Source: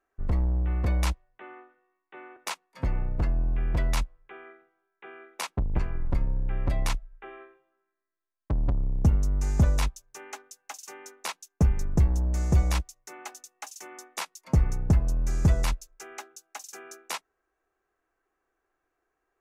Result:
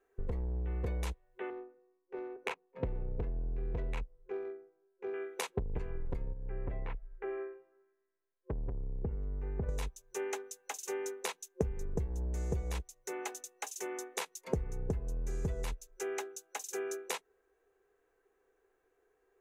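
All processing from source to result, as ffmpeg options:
-filter_complex "[0:a]asettb=1/sr,asplit=3[s0][s1][s2];[s0]atrim=end=1.504[s3];[s1]atrim=start=1.5:end=5.14,asetpts=PTS-STARTPTS,afade=t=in:d=0.004:c=qsin,afade=t=out:st=3.636:d=0.004:c=qsin,equalizer=f=2500:w=3.6:g=8.5,adynamicsmooth=sensitivity=2:basefreq=750[s4];[s2]atrim=start=5.136[s5];[s3][s4]acrossfade=d=0.004:c1=hsin:c2=qsin[s6];[s6][s5]acrossfade=d=0.004:c1=qsin:c2=hsin,asettb=1/sr,asplit=3[s7][s8][s9];[s7]atrim=end=6.334[s10];[s8]atrim=start=6.33:end=9.69,asetpts=PTS-STARTPTS,afade=t=in:d=0.004:c=qsin,afade=t=out:st=3.356:d=0.004:c=qsin,lowpass=f=2300:w=0.5412,lowpass=f=2300:w=1.3066,acompressor=threshold=0.00501:ratio=1.5:attack=3.2:release=140:knee=1:detection=peak[s11];[s9]atrim=start=9.686[s12];[s10][s11]acrossfade=d=0.004:c1=hsin:c2=qsin[s13];[s13][s12]acrossfade=d=0.004:c1=qsin:c2=hsin,acompressor=threshold=0.0178:ratio=6,superequalizer=7b=3.55:10b=0.708:14b=0.631,volume=1.12"

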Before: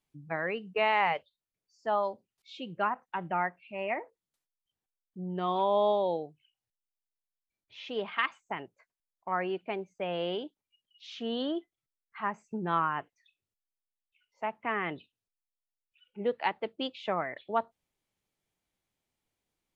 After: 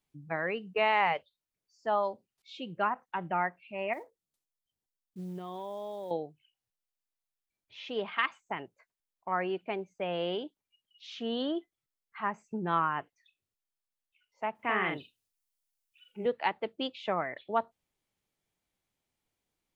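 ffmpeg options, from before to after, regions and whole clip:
-filter_complex "[0:a]asettb=1/sr,asplit=3[s0][s1][s2];[s0]atrim=end=3.934[s3];[s1]atrim=start=3.93:end=6.11,asetpts=PTS-STARTPTS,afade=t=in:d=0.004:c=qsin,afade=t=out:st=2.176:d=0.004:c=qsin,equalizer=f=1600:t=o:w=2.3:g=-6.5,acompressor=threshold=0.0158:ratio=6:attack=3.2:release=140:knee=1:detection=peak,acrusher=bits=7:mode=log:mix=0:aa=0.000001[s4];[s2]atrim=start=6.106[s5];[s3][s4]acrossfade=d=0.004:c1=hsin:c2=qsin[s6];[s6][s5]acrossfade=d=0.004:c1=qsin:c2=hsin,asettb=1/sr,asplit=3[s7][s8][s9];[s7]atrim=end=14.554[s10];[s8]atrim=start=14.55:end=16.26,asetpts=PTS-STARTPTS,afade=t=in:d=0.004:c=qsin,afade=t=out:st=1.706:d=0.004:c=qsin,highshelf=f=3800:g=9.5,asplit=2[s11][s12];[s12]adelay=42,volume=0.631[s13];[s11][s13]amix=inputs=2:normalize=0,atrim=end_sample=75411[s14];[s9]atrim=start=16.256[s15];[s10][s14]acrossfade=d=0.004:c1=hsin:c2=qsin[s16];[s16][s15]acrossfade=d=0.004:c1=qsin:c2=hsin"

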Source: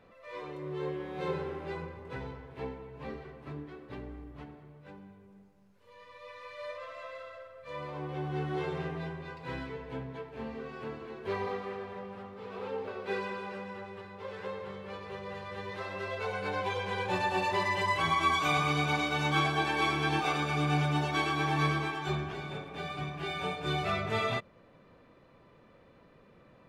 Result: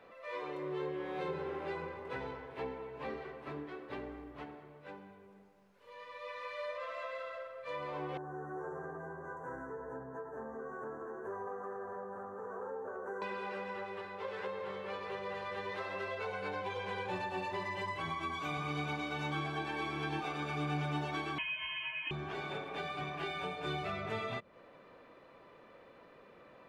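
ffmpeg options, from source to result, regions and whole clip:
-filter_complex "[0:a]asettb=1/sr,asplit=3[s0][s1][s2];[s0]atrim=end=8.174[s3];[s1]atrim=start=8.17:end=13.22,asetpts=PTS-STARTPTS,afade=t=in:d=0.004:c=qsin,afade=t=out:st=5.046:d=0.004:c=qsin,asuperstop=centerf=3300:order=20:qfactor=0.78,acompressor=threshold=0.00794:ratio=3:attack=3.2:release=140:knee=1:detection=peak[s4];[s2]atrim=start=13.216[s5];[s3][s4]acrossfade=d=0.004:c1=hsin:c2=qsin[s6];[s6][s5]acrossfade=d=0.004:c1=qsin:c2=hsin,asettb=1/sr,asplit=3[s7][s8][s9];[s7]atrim=end=21.384[s10];[s8]atrim=start=21.38:end=22.11,asetpts=PTS-STARTPTS,afade=t=in:d=0.004:c=qsin,afade=t=out:st=0.726:d=0.004:c=qsin,equalizer=f=770:t=o:w=0.21:g=14.5,lowpass=f=2800:t=q:w=0.5098,lowpass=f=2800:t=q:w=0.6013,lowpass=f=2800:t=q:w=0.9,lowpass=f=2800:t=q:w=2.563,afreqshift=-3300[s11];[s9]atrim=start=22.106[s12];[s10][s11]acrossfade=d=0.004:c1=hsin:c2=qsin[s13];[s13][s12]acrossfade=d=0.004:c1=qsin:c2=hsin,bass=f=250:g=-13,treble=f=4000:g=-5,acrossover=split=270[s14][s15];[s15]acompressor=threshold=0.00891:ratio=10[s16];[s14][s16]amix=inputs=2:normalize=0,volume=1.58"

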